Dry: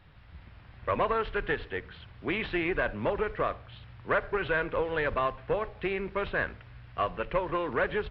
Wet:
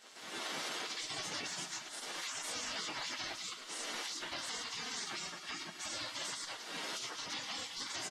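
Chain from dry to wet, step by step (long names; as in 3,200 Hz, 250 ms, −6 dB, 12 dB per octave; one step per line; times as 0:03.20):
partials spread apart or drawn together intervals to 127%
camcorder AGC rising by 29 dB per second
low-shelf EQ 80 Hz +8.5 dB
gate on every frequency bin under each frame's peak −30 dB weak
notch filter 2,500 Hz, Q 14
repeating echo 110 ms, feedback 42%, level −14.5 dB
convolution reverb, pre-delay 6 ms, DRR 12 dB
brickwall limiter −44 dBFS, peak gain reduction 11 dB
0:05.04–0:05.93: notch comb filter 500 Hz
level +13 dB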